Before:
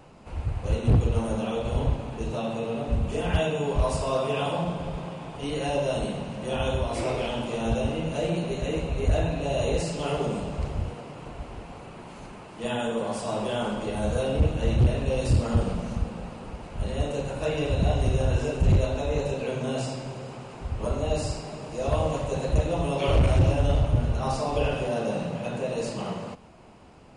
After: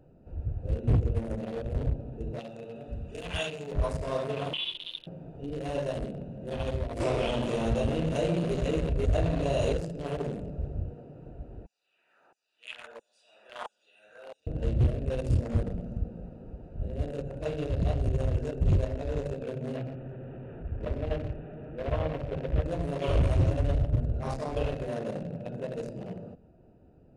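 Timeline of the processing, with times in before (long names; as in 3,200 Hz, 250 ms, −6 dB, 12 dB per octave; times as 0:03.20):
0:02.39–0:03.72: tilt shelving filter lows −8.5 dB
0:04.53–0:05.07: voice inversion scrambler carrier 3,600 Hz
0:07.00–0:09.73: envelope flattener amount 50%
0:11.66–0:14.47: auto-filter high-pass saw down 1.5 Hz 940–6,700 Hz
0:19.76–0:22.66: linear delta modulator 16 kbit/s, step −29 dBFS
whole clip: adaptive Wiener filter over 41 samples; parametric band 210 Hz −4 dB 0.29 octaves; notch filter 830 Hz, Q 12; level −3.5 dB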